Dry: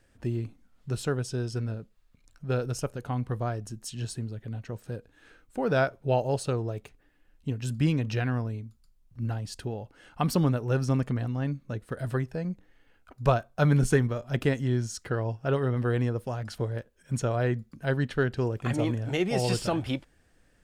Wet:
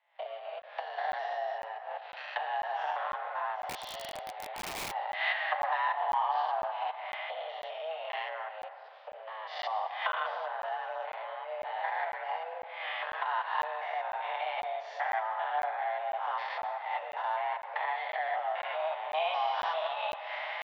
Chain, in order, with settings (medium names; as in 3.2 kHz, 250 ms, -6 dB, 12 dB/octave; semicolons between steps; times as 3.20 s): spectrogram pixelated in time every 200 ms; recorder AGC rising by 71 dB/s; waveshaping leveller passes 2; compression 12:1, threshold -21 dBFS, peak gain reduction 9 dB; flange 1.5 Hz, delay 5.1 ms, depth 2.4 ms, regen -10%; mistuned SSB +320 Hz 340–3300 Hz; reverberation RT60 3.0 s, pre-delay 88 ms, DRR 9 dB; 3.69–4.92 s: integer overflow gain 32.5 dB; crackling interface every 0.50 s, samples 512, zero, from 0.62 s